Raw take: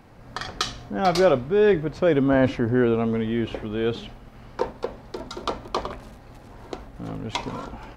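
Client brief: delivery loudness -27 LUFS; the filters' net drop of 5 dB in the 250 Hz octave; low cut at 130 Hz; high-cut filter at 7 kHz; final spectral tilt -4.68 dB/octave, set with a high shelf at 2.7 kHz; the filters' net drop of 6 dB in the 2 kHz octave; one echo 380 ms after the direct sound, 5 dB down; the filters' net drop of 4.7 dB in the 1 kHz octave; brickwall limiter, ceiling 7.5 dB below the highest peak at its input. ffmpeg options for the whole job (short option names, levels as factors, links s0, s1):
-af "highpass=130,lowpass=7000,equalizer=f=250:t=o:g=-5.5,equalizer=f=1000:t=o:g=-5.5,equalizer=f=2000:t=o:g=-8,highshelf=f=2700:g=5.5,alimiter=limit=0.133:level=0:latency=1,aecho=1:1:380:0.562,volume=1.26"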